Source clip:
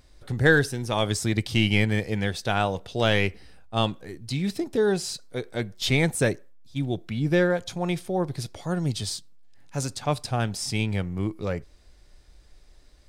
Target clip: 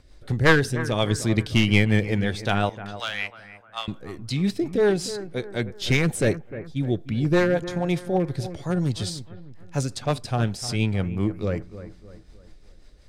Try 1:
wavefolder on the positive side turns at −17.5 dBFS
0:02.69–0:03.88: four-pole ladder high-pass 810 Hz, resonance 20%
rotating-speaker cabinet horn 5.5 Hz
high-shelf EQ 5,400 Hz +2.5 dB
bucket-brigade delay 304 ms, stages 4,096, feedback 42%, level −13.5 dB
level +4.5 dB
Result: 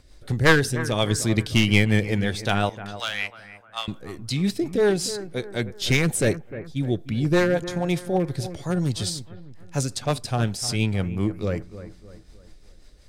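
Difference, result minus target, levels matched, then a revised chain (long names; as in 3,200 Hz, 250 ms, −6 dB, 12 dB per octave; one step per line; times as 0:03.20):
8,000 Hz band +4.5 dB
wavefolder on the positive side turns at −17.5 dBFS
0:02.69–0:03.88: four-pole ladder high-pass 810 Hz, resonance 20%
rotating-speaker cabinet horn 5.5 Hz
high-shelf EQ 5,400 Hz −5 dB
bucket-brigade delay 304 ms, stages 4,096, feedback 42%, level −13.5 dB
level +4.5 dB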